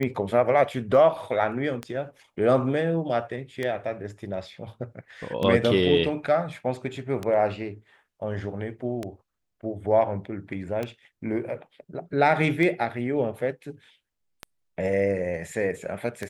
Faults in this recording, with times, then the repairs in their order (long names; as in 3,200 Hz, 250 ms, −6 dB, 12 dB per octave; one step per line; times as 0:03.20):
scratch tick 33 1/3 rpm −16 dBFS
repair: click removal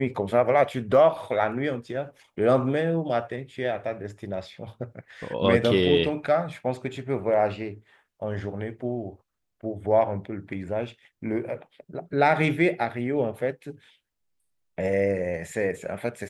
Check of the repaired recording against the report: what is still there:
none of them is left